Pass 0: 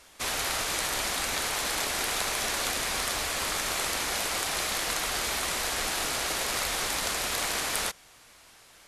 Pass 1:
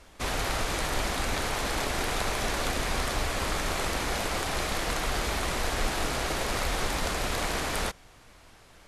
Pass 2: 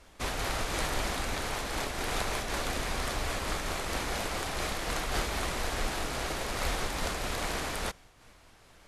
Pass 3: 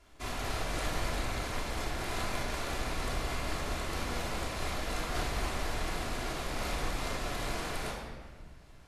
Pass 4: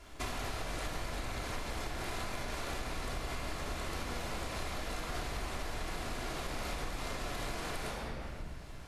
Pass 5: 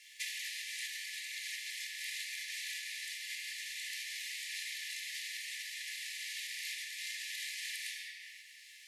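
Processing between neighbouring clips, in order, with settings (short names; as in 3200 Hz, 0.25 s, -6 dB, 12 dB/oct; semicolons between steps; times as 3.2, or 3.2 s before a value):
tilt -2.5 dB/oct; gain +1.5 dB
noise-modulated level, depth 60%
shoebox room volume 1900 m³, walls mixed, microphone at 3.1 m; gain -8.5 dB
compressor 6:1, threshold -43 dBFS, peak gain reduction 14.5 dB; gain +7.5 dB
brick-wall FIR high-pass 1700 Hz; gain +4 dB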